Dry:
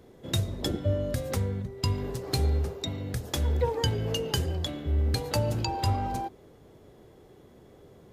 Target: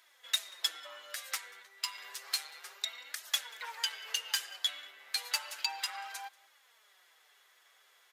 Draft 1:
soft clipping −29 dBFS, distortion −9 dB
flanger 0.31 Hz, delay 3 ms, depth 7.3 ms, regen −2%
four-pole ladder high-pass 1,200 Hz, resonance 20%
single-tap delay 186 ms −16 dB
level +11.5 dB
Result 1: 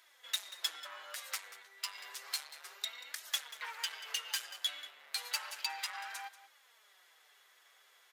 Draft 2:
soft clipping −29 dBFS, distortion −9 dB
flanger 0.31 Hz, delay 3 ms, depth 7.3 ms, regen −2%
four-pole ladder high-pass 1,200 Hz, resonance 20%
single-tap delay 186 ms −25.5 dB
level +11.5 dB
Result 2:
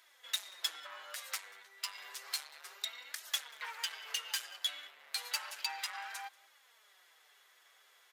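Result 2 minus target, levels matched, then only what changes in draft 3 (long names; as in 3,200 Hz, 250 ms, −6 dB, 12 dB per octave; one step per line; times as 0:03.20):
soft clipping: distortion +8 dB
change: soft clipping −21.5 dBFS, distortion −17 dB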